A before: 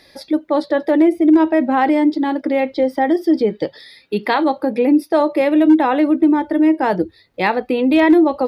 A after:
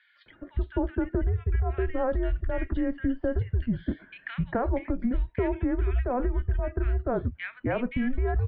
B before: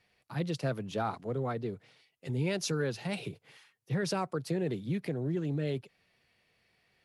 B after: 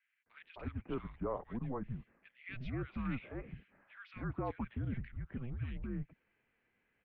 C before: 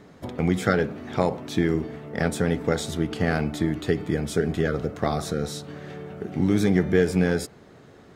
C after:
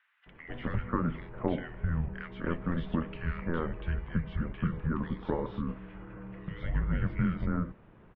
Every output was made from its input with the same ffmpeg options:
-filter_complex "[0:a]highpass=f=240:t=q:w=0.5412,highpass=f=240:t=q:w=1.307,lowpass=f=2900:t=q:w=0.5176,lowpass=f=2900:t=q:w=0.7071,lowpass=f=2900:t=q:w=1.932,afreqshift=-250,acompressor=threshold=0.112:ratio=6,acrossover=split=1600[s0][s1];[s0]adelay=260[s2];[s2][s1]amix=inputs=2:normalize=0,volume=0.631"

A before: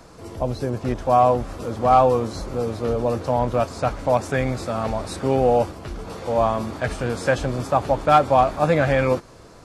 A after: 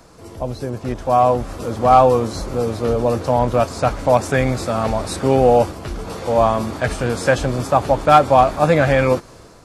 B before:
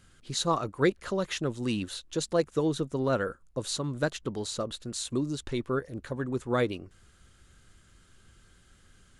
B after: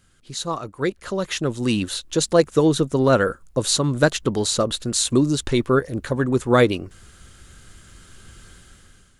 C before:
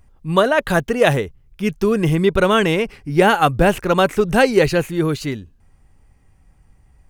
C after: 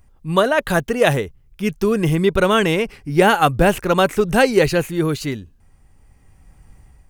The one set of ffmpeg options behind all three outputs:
-af "highshelf=f=7100:g=4.5,dynaudnorm=f=850:g=3:m=5.62,volume=0.891"

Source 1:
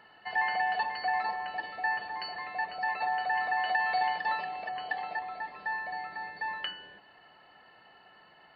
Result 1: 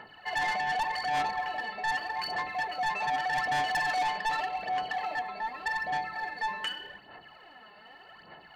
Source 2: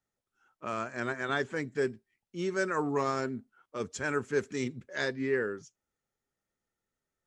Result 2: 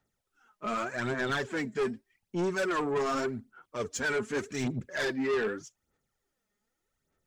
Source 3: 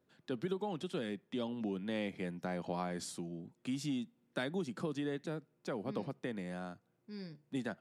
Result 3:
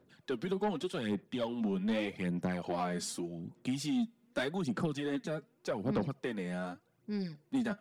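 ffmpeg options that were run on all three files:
-af "aphaser=in_gain=1:out_gain=1:delay=4.9:decay=0.6:speed=0.84:type=sinusoidal,asoftclip=type=tanh:threshold=0.0355,volume=1.5"

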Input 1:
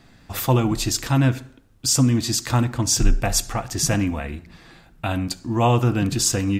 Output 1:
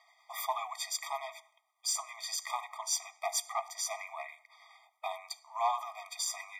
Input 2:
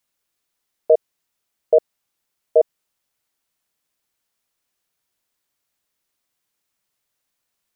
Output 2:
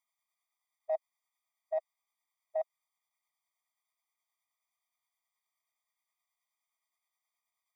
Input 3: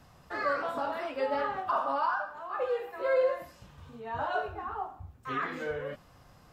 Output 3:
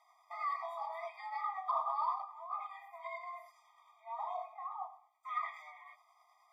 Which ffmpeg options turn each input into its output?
-af "highpass=110,equalizer=f=1500:t=o:w=0.93:g=11.5,tremolo=f=9.5:d=0.3,asoftclip=type=tanh:threshold=0.316,afftfilt=real='re*eq(mod(floor(b*sr/1024/630),2),1)':imag='im*eq(mod(floor(b*sr/1024/630),2),1)':win_size=1024:overlap=0.75,volume=0.398"

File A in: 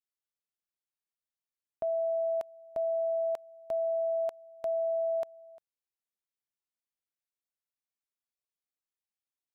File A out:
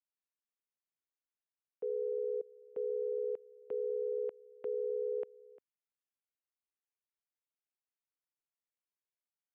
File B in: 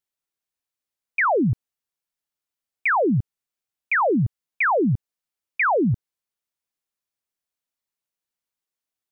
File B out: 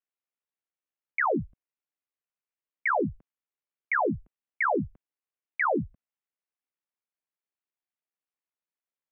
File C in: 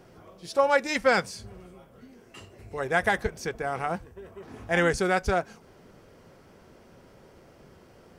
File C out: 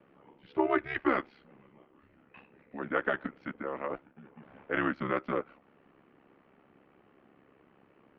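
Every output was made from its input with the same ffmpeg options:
-af "aeval=exprs='val(0)*sin(2*PI*34*n/s)':c=same,highpass=f=400:t=q:w=0.5412,highpass=f=400:t=q:w=1.307,lowpass=f=3100:t=q:w=0.5176,lowpass=f=3100:t=q:w=0.7071,lowpass=f=3100:t=q:w=1.932,afreqshift=-200,volume=0.75"

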